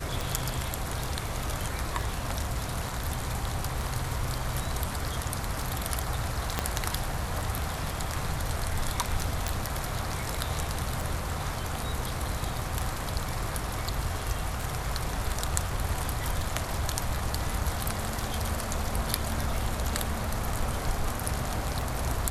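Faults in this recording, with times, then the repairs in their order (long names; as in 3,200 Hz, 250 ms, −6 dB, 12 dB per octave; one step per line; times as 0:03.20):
scratch tick 33 1/3 rpm
0:06.59: click −10 dBFS
0:09.48: click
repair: click removal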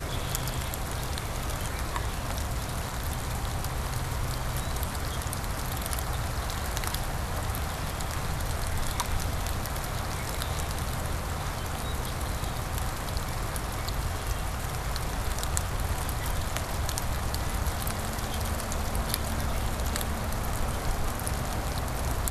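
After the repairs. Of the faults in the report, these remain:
0:06.59: click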